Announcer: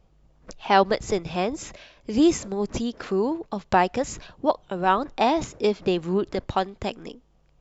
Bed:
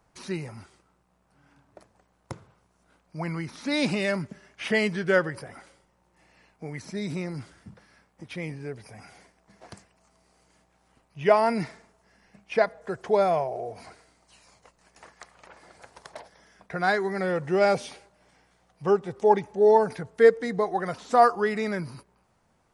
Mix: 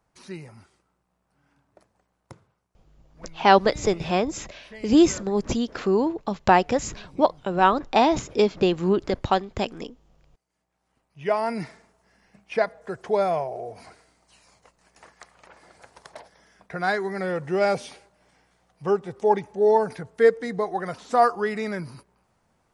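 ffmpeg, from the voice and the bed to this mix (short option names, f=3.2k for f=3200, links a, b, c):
-filter_complex "[0:a]adelay=2750,volume=2.5dB[a];[1:a]volume=13.5dB,afade=t=out:st=2.1:d=0.86:silence=0.199526,afade=t=in:st=10.47:d=1.41:silence=0.112202[b];[a][b]amix=inputs=2:normalize=0"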